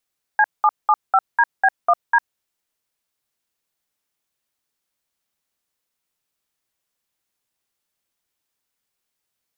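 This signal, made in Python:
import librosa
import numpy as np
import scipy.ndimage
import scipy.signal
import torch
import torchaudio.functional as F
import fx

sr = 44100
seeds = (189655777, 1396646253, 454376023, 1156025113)

y = fx.dtmf(sr, digits='C775DB1D', tone_ms=52, gap_ms=197, level_db=-13.5)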